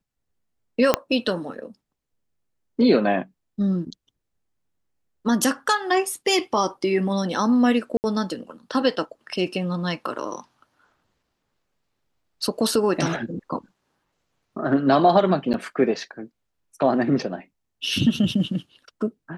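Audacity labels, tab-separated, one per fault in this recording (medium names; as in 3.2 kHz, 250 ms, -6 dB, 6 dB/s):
0.940000	0.940000	pop -2 dBFS
7.970000	8.040000	dropout 69 ms
15.530000	15.540000	dropout 9 ms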